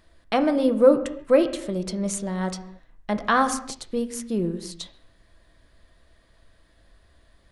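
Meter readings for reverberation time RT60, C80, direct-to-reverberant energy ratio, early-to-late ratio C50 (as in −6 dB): non-exponential decay, 14.5 dB, 7.0 dB, 12.5 dB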